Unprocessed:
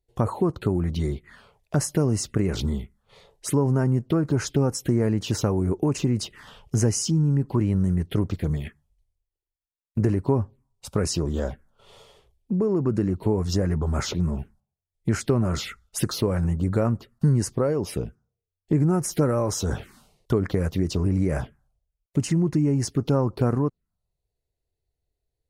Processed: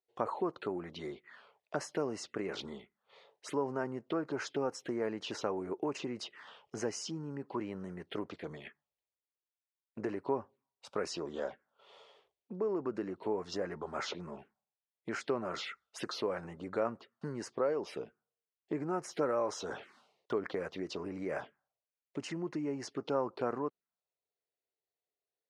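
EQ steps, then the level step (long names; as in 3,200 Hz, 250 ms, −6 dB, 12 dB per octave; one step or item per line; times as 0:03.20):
band-pass filter 460–3,800 Hz
−5.0 dB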